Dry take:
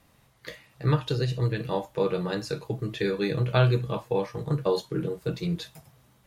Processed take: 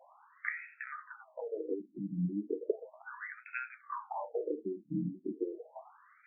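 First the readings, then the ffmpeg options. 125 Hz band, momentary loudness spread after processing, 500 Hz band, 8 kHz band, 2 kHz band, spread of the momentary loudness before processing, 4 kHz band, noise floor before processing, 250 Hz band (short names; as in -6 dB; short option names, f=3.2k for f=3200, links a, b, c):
-19.0 dB, 11 LU, -11.0 dB, n/a, -4.5 dB, 10 LU, under -40 dB, -62 dBFS, -7.5 dB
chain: -af "acompressor=threshold=-36dB:ratio=6,afftfilt=real='re*between(b*sr/1024,230*pow(1900/230,0.5+0.5*sin(2*PI*0.35*pts/sr))/1.41,230*pow(1900/230,0.5+0.5*sin(2*PI*0.35*pts/sr))*1.41)':imag='im*between(b*sr/1024,230*pow(1900/230,0.5+0.5*sin(2*PI*0.35*pts/sr))/1.41,230*pow(1900/230,0.5+0.5*sin(2*PI*0.35*pts/sr))*1.41)':win_size=1024:overlap=0.75,volume=10dB"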